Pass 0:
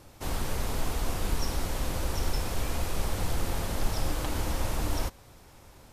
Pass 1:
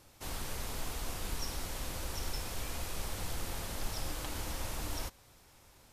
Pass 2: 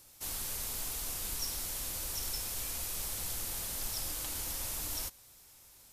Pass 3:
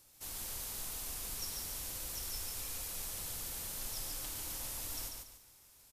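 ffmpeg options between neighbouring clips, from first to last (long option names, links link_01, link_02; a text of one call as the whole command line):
ffmpeg -i in.wav -af "tiltshelf=frequency=1400:gain=-3.5,volume=-6.5dB" out.wav
ffmpeg -i in.wav -af "crystalizer=i=3.5:c=0,volume=-6dB" out.wav
ffmpeg -i in.wav -af "aecho=1:1:143|286|429|572:0.631|0.202|0.0646|0.0207,volume=-5.5dB" out.wav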